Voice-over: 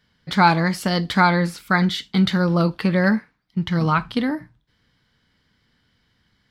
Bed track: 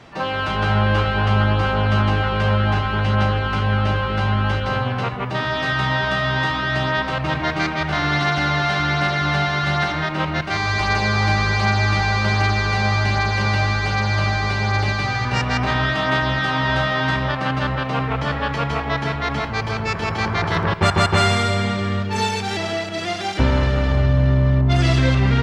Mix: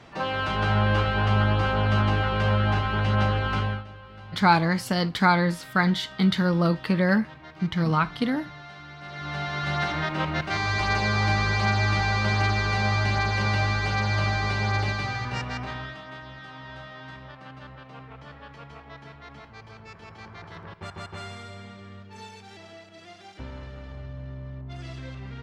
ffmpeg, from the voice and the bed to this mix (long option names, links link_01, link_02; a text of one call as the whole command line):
ffmpeg -i stem1.wav -i stem2.wav -filter_complex "[0:a]adelay=4050,volume=-3.5dB[link_01];[1:a]volume=14dB,afade=type=out:start_time=3.59:duration=0.25:silence=0.112202,afade=type=in:start_time=9.01:duration=0.95:silence=0.11885,afade=type=out:start_time=14.67:duration=1.37:silence=0.141254[link_02];[link_01][link_02]amix=inputs=2:normalize=0" out.wav